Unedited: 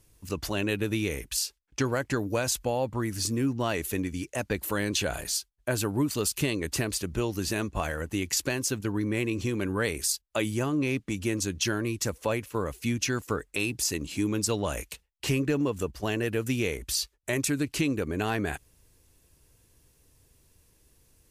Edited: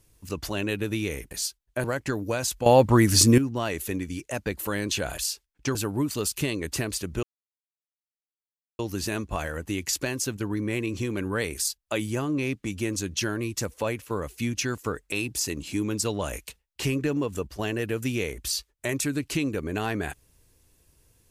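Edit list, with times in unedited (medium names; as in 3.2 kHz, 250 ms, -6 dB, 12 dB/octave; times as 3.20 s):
1.31–1.88 s: swap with 5.22–5.75 s
2.70–3.42 s: gain +12 dB
7.23 s: insert silence 1.56 s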